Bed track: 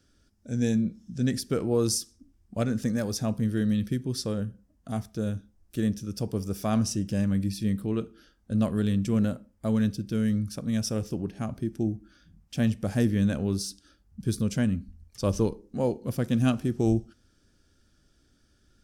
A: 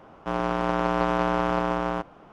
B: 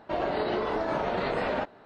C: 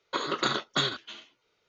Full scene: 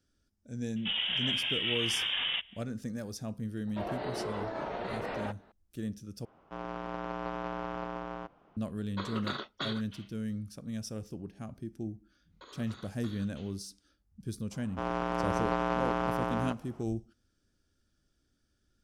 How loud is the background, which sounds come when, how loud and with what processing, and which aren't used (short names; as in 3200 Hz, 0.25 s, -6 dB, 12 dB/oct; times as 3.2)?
bed track -10.5 dB
0.76 add B -3.5 dB + inverted band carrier 3600 Hz
3.67 add B -8 dB
6.25 replace with A -13 dB + LPF 6100 Hz
8.84 add C -9 dB + bell 6900 Hz -12 dB 0.5 oct
12.28 add C -13.5 dB, fades 0.05 s + compressor 4:1, threshold -36 dBFS
14.51 add A -6.5 dB